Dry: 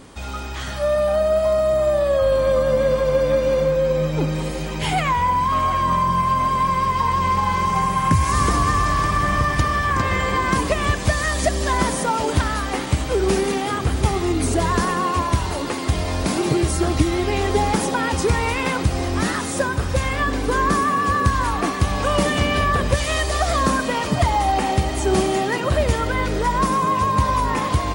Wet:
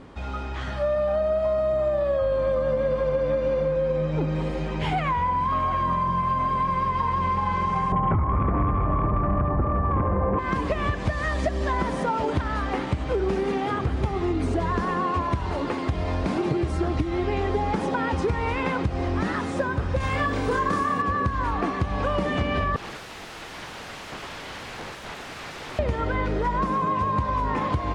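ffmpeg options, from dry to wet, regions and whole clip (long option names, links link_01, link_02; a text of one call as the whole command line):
ffmpeg -i in.wav -filter_complex "[0:a]asettb=1/sr,asplit=3[link_01][link_02][link_03];[link_01]atrim=end=7.924[link_04];[link_02]atrim=start=7.92:end=10.39,asetpts=PTS-STARTPTS,afade=type=in:duration=0.004:curve=qsin,afade=type=out:start_time=2.466:duration=0.004:curve=qsin,lowpass=frequency=1000:width=0.5412,lowpass=frequency=1000:width=1.3066,aeval=exprs='0.473*sin(PI/2*2.24*val(0)/0.473)':channel_layout=same,aecho=1:1:71:0.282,atrim=end_sample=108927[link_05];[link_03]atrim=start=10.386[link_06];[link_04][link_05]acrossfade=duration=0.004:curve1=hsin:curve2=qsin[link_07];[link_07][link_06]acrossfade=duration=0.004:curve1=qsin:curve2=hsin,asettb=1/sr,asplit=3[link_08][link_09][link_10];[link_08]atrim=end=20.004[link_11];[link_09]atrim=start=20:end=21.02,asetpts=PTS-STARTPTS,afade=type=in:duration=0.004:curve=qsin,afade=type=out:start_time=1.016:duration=0.004:curve=qsin,highshelf=frequency=5300:gain=12,asplit=2[link_12][link_13];[link_13]adelay=29,volume=-2dB[link_14];[link_12][link_14]amix=inputs=2:normalize=0,atrim=end_sample=44982[link_15];[link_10]atrim=start=21.016[link_16];[link_11][link_15]acrossfade=duration=0.004:curve1=hsin:curve2=qsin[link_17];[link_17][link_16]acrossfade=duration=0.004:curve1=qsin:curve2=hsin,asettb=1/sr,asplit=3[link_18][link_19][link_20];[link_18]atrim=end=22.764[link_21];[link_19]atrim=start=22.76:end=25.79,asetpts=PTS-STARTPTS,afade=type=in:duration=0.004:curve=qsin,afade=type=out:start_time=3.026:duration=0.004:curve=qsin,highshelf=frequency=3100:gain=5,acompressor=threshold=-19dB:ratio=8:attack=3.2:release=140:knee=1:detection=peak,aeval=exprs='(mod(18.8*val(0)+1,2)-1)/18.8':channel_layout=same[link_22];[link_20]atrim=start=25.786[link_23];[link_21][link_22]acrossfade=duration=0.004:curve1=hsin:curve2=qsin[link_24];[link_24][link_23]acrossfade=duration=0.004:curve1=qsin:curve2=hsin,lowpass=frequency=2900:poles=1,aemphasis=mode=reproduction:type=50fm,acompressor=threshold=-19dB:ratio=6,volume=-1.5dB" out.wav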